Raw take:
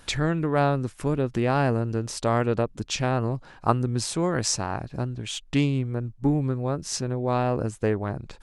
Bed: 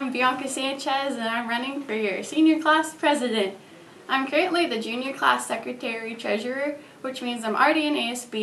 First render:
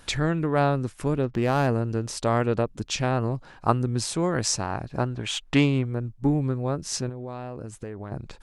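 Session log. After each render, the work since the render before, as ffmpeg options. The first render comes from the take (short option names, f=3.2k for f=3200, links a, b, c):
-filter_complex "[0:a]asplit=3[a][b][c];[a]afade=t=out:st=1.22:d=0.02[d];[b]adynamicsmooth=sensitivity=6:basefreq=1.9k,afade=t=in:st=1.22:d=0.02,afade=t=out:st=1.66:d=0.02[e];[c]afade=t=in:st=1.66:d=0.02[f];[d][e][f]amix=inputs=3:normalize=0,asettb=1/sr,asplit=3[g][h][i];[g]atrim=end=4.954[j];[h]atrim=start=4.95:end=5.85,asetpts=PTS-STARTPTS,afade=t=in:d=0.004:c=qsin,afade=t=out:st=0.896:d=0.004:c=qsin,equalizer=f=1.1k:w=0.44:g=9[k];[i]atrim=start=5.846[l];[j][k]acrossfade=d=0.004:c1=hsin:c2=qsin[m];[m][l]acrossfade=d=0.004:c1=qsin:c2=hsin,asettb=1/sr,asplit=3[n][o][p];[n]atrim=end=7.094[q];[o]atrim=start=7.09:end=8.12,asetpts=PTS-STARTPTS,afade=t=in:d=0.004:c=qsin,afade=t=out:st=1.026:d=0.004:c=qsin,acompressor=threshold=-31dB:ratio=8:attack=3.2:release=140:knee=1:detection=peak[r];[p]atrim=start=8.116[s];[q][r]acrossfade=d=0.004:c1=hsin:c2=qsin[t];[t][s]acrossfade=d=0.004:c1=qsin:c2=hsin"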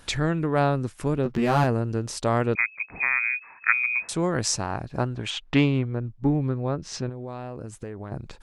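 -filter_complex "[0:a]asettb=1/sr,asplit=3[a][b][c];[a]atrim=end=1.244[d];[b]atrim=start=1.24:end=1.64,asetpts=PTS-STARTPTS,afade=t=in:d=0.004:c=qsin,afade=t=out:st=0.396:d=0.004:c=qsin,asplit=2[e][f];[f]adelay=13,volume=-2dB[g];[e][g]amix=inputs=2:normalize=0,atrim=end_sample=17640[h];[c]atrim=start=1.636[i];[d][h]acrossfade=d=0.004:c1=hsin:c2=qsin[j];[j][i]acrossfade=d=0.004:c1=qsin:c2=hsin,asettb=1/sr,asplit=3[k][l][m];[k]atrim=end=2.554[n];[l]atrim=start=2.55:end=4.09,asetpts=PTS-STARTPTS,afade=t=in:d=0.004:c=qsin,afade=t=out:st=1.536:d=0.004:c=qsin,lowpass=f=2.2k:t=q:w=0.5098,lowpass=f=2.2k:t=q:w=0.6013,lowpass=f=2.2k:t=q:w=0.9,lowpass=f=2.2k:t=q:w=2.563,afreqshift=-2600[o];[m]atrim=start=4.086[p];[n][o]acrossfade=d=0.004:c1=hsin:c2=qsin[q];[q][p]acrossfade=d=0.004:c1=qsin:c2=hsin,asettb=1/sr,asplit=3[r][s][t];[r]atrim=end=5.304[u];[s]atrim=start=5.3:end=7.12,asetpts=PTS-STARTPTS,afade=t=in:d=0.004:c=qsin,afade=t=out:st=1.816:d=0.004:c=qsin,lowpass=4.5k[v];[t]atrim=start=7.116[w];[u][v]acrossfade=d=0.004:c1=hsin:c2=qsin[x];[x][w]acrossfade=d=0.004:c1=qsin:c2=hsin"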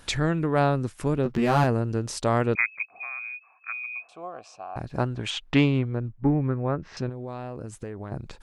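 -filter_complex "[0:a]asettb=1/sr,asplit=3[a][b][c];[a]atrim=end=2.854[d];[b]atrim=start=2.85:end=4.76,asetpts=PTS-STARTPTS,afade=t=in:d=0.004:c=qsin,afade=t=out:st=1.906:d=0.004:c=qsin,asplit=3[e][f][g];[e]bandpass=f=730:t=q:w=8,volume=0dB[h];[f]bandpass=f=1.09k:t=q:w=8,volume=-6dB[i];[g]bandpass=f=2.44k:t=q:w=8,volume=-9dB[j];[h][i][j]amix=inputs=3:normalize=0[k];[c]atrim=start=4.756[l];[d][k]acrossfade=d=0.004:c1=hsin:c2=qsin[m];[m][l]acrossfade=d=0.004:c1=qsin:c2=hsin,asettb=1/sr,asplit=3[n][o][p];[n]atrim=end=6.084[q];[o]atrim=start=6.08:end=6.97,asetpts=PTS-STARTPTS,afade=t=in:d=0.004:c=qsin,afade=t=out:st=0.886:d=0.004:c=qsin,lowpass=f=1.9k:t=q:w=1.5[r];[p]atrim=start=6.966[s];[q][r]acrossfade=d=0.004:c1=hsin:c2=qsin[t];[t][s]acrossfade=d=0.004:c1=qsin:c2=hsin"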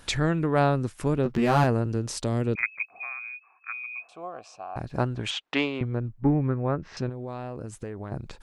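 -filter_complex "[0:a]asettb=1/sr,asplit=3[a][b][c];[a]atrim=end=1.864[d];[b]atrim=start=1.86:end=2.63,asetpts=PTS-STARTPTS,afade=t=in:d=0.004:c=qsin,afade=t=out:st=0.766:d=0.004:c=qsin,acrossover=split=460|3000[e][f][g];[f]acompressor=threshold=-37dB:ratio=6:attack=3.2:release=140:knee=2.83:detection=peak[h];[e][h][g]amix=inputs=3:normalize=0[i];[c]atrim=start=2.626[j];[d][i]acrossfade=d=0.004:c1=hsin:c2=qsin[k];[k][j]acrossfade=d=0.004:c1=qsin:c2=hsin,asettb=1/sr,asplit=3[l][m][n];[l]atrim=end=3.134[o];[m]atrim=start=3.13:end=3.98,asetpts=PTS-STARTPTS,afade=t=in:d=0.004:c=qsin,afade=t=out:st=0.846:d=0.004:c=qsin,highpass=150,equalizer=f=220:t=q:w=4:g=-8,equalizer=f=360:t=q:w=4:g=8,equalizer=f=610:t=q:w=4:g=-9,lowpass=f=2.6k:w=0.5412,lowpass=f=2.6k:w=1.3066[p];[n]atrim=start=3.976[q];[o][p]acrossfade=d=0.004:c1=hsin:c2=qsin[r];[r][q]acrossfade=d=0.004:c1=qsin:c2=hsin,asettb=1/sr,asplit=3[s][t][u];[s]atrim=end=5.314[v];[t]atrim=start=5.31:end=5.81,asetpts=PTS-STARTPTS,afade=t=in:d=0.004:c=qsin,afade=t=out:st=0.496:d=0.004:c=qsin,highpass=410,lowpass=7.2k[w];[u]atrim=start=5.806[x];[v][w]acrossfade=d=0.004:c1=hsin:c2=qsin[y];[y][x]acrossfade=d=0.004:c1=qsin:c2=hsin"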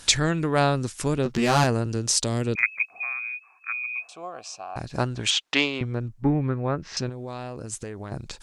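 -af "equalizer=f=6.6k:w=0.49:g=14"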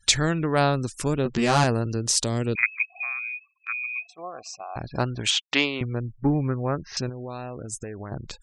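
-af "afftfilt=real='re*gte(hypot(re,im),0.00794)':imag='im*gte(hypot(re,im),0.00794)':win_size=1024:overlap=0.75,agate=range=-8dB:threshold=-43dB:ratio=16:detection=peak"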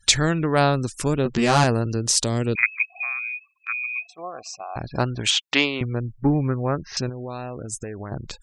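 -af "volume=2.5dB"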